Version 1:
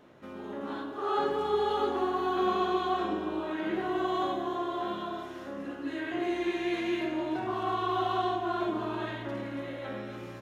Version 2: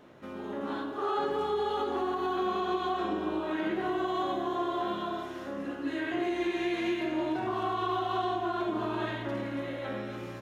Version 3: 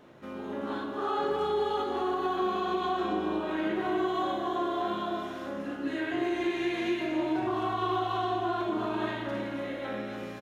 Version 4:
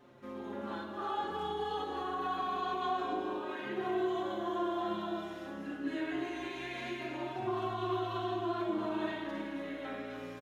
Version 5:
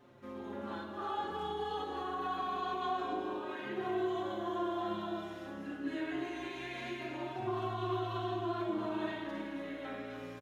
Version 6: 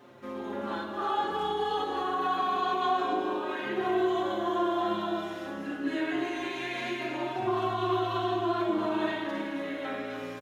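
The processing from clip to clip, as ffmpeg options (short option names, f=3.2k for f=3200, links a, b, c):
-af "alimiter=limit=-24dB:level=0:latency=1:release=148,volume=2dB"
-af "aecho=1:1:37.9|262.4:0.316|0.355"
-filter_complex "[0:a]asplit=2[a][b];[b]adelay=5.2,afreqshift=-0.27[c];[a][c]amix=inputs=2:normalize=1,volume=-2dB"
-af "equalizer=f=100:t=o:w=0.42:g=6.5,volume=-1.5dB"
-af "highpass=f=210:p=1,volume=8.5dB"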